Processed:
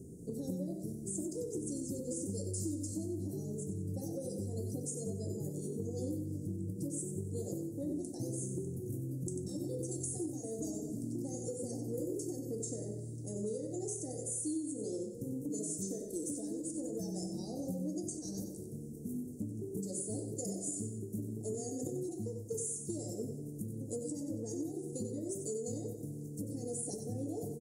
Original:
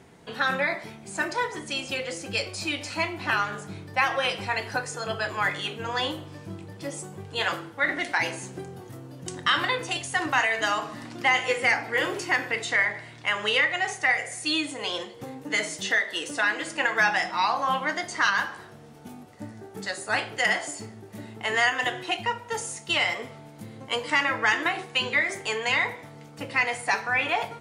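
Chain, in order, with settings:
inverse Chebyshev band-stop filter 1,000–3,200 Hz, stop band 60 dB
downward compressor, threshold −41 dBFS, peak gain reduction 12 dB
on a send: repeating echo 93 ms, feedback 43%, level −8.5 dB
on the sum: every ending faded ahead of time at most 110 dB per second
level +5.5 dB

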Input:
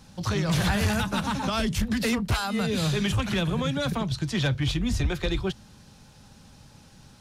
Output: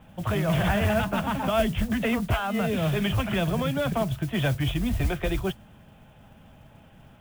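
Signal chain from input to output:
Butterworth low-pass 3,400 Hz 96 dB per octave
parametric band 660 Hz +11.5 dB 0.23 octaves
noise that follows the level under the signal 21 dB

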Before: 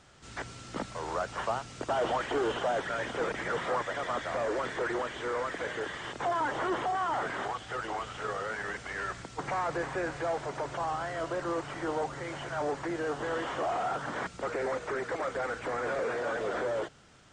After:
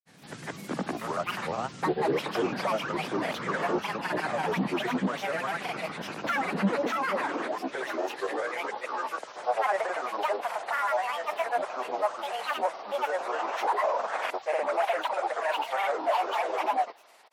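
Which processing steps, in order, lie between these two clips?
granular cloud 100 ms, grains 20 per second, pitch spread up and down by 12 semitones
high-pass filter sweep 170 Hz → 670 Hz, 0:06.21–0:09.54
level +2.5 dB

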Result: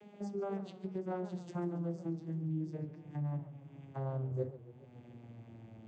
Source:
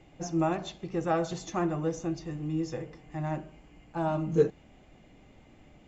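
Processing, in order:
vocoder with a gliding carrier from G#3, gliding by −11 semitones
downward compressor 2 to 1, threshold −56 dBFS, peak gain reduction 18.5 dB
feedback echo with a swinging delay time 141 ms, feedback 59%, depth 207 cents, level −15.5 dB
level +8 dB

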